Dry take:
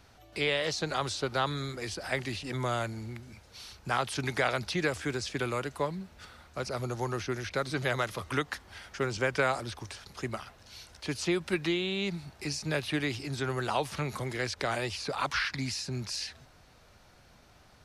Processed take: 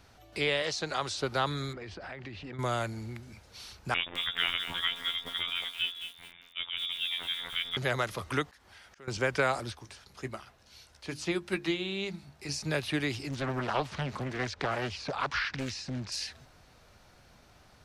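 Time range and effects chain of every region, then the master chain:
0.62–1.18 s: low-pass 9.2 kHz + bass shelf 350 Hz -6 dB
1.73–2.59 s: low-pass 2.7 kHz + compression 16:1, threshold -38 dBFS
3.94–7.77 s: frequency inversion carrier 3.6 kHz + robot voice 86.7 Hz + bit-crushed delay 215 ms, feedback 35%, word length 7-bit, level -9 dB
8.50–9.08 s: bass shelf 350 Hz -5.5 dB + slow attack 199 ms + compression 2:1, threshold -55 dBFS
9.72–12.49 s: hum notches 50/100/150/200/250/300/350 Hz + doubling 15 ms -12.5 dB + upward expansion, over -38 dBFS
13.29–16.12 s: distance through air 87 m + loudspeaker Doppler distortion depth 0.86 ms
whole clip: none

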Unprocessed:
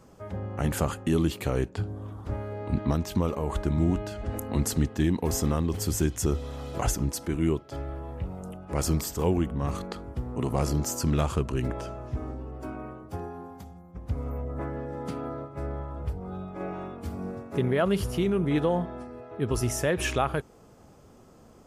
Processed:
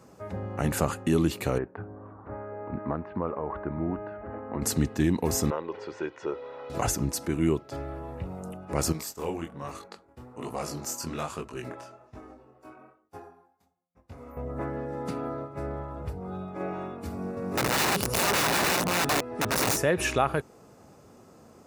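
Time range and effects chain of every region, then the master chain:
1.58–4.62 s: low-pass 1.7 kHz 24 dB/octave + bass shelf 290 Hz -10.5 dB
5.50–6.70 s: band-pass 460–2600 Hz + distance through air 150 m + comb 2.1 ms, depth 48%
8.92–14.37 s: expander -32 dBFS + bass shelf 370 Hz -10.5 dB + chorus 1.2 Hz, delay 18.5 ms, depth 6.8 ms
17.00–19.83 s: chunks repeated in reverse 368 ms, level 0 dB + integer overflow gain 21.5 dB
whole clip: high-pass 71 Hz; bass shelf 150 Hz -4 dB; band-stop 3.2 kHz, Q 10; trim +2 dB

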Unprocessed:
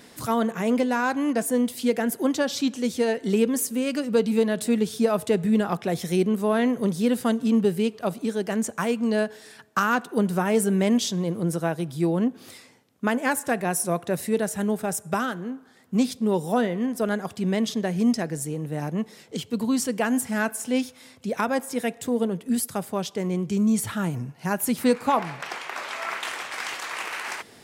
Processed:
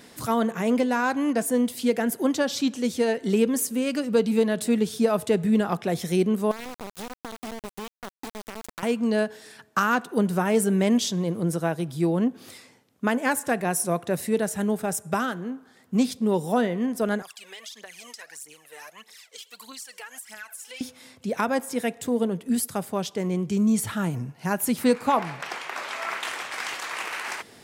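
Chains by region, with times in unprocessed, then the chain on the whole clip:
6.51–8.83 s: compression 8:1, threshold -30 dBFS + small samples zeroed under -29 dBFS
17.22–20.81 s: Bessel high-pass 1.8 kHz + phaser 1.6 Hz, delay 2.5 ms, feedback 69% + compression 4:1, threshold -38 dBFS
whole clip: none

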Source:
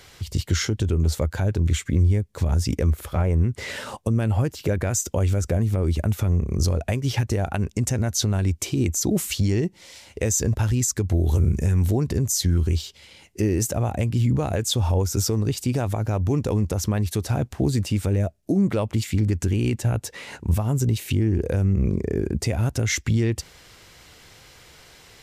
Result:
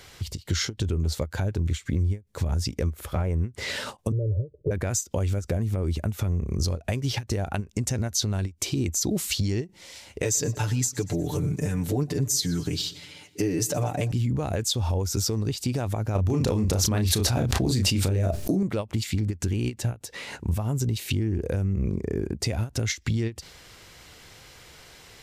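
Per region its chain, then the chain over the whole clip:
4.12–4.71 s: rippled Chebyshev low-pass 610 Hz, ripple 6 dB + comb 2.2 ms, depth 92%
10.22–14.12 s: high-pass 120 Hz + comb 6.8 ms, depth 88% + feedback delay 120 ms, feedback 59%, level -21 dB
16.15–18.63 s: doubling 32 ms -5.5 dB + level flattener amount 100%
whole clip: dynamic bell 4.3 kHz, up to +6 dB, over -44 dBFS, Q 1.6; compression 2.5:1, threshold -24 dBFS; endings held to a fixed fall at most 310 dB/s

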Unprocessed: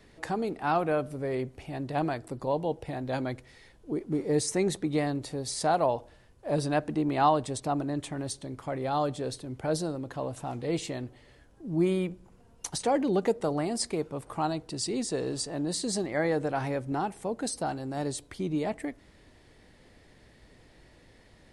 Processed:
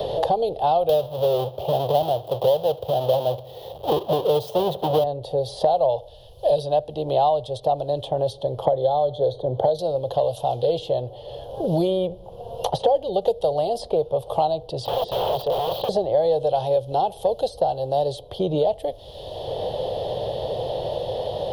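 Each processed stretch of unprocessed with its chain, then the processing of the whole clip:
0.89–5.04 s: square wave that keeps the level + high-pass 99 Hz + feedback delay 71 ms, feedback 45%, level -23 dB
8.65–9.79 s: boxcar filter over 17 samples + three bands compressed up and down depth 100%
14.85–15.89 s: resonant high shelf 5.3 kHz -11 dB, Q 1.5 + integer overflow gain 32.5 dB
whole clip: FFT filter 120 Hz 0 dB, 270 Hz -20 dB, 530 Hz +10 dB, 800 Hz +4 dB, 1.4 kHz -21 dB, 2.2 kHz -27 dB, 3.2 kHz +4 dB, 8 kHz -23 dB, 12 kHz -3 dB; three bands compressed up and down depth 100%; trim +4.5 dB

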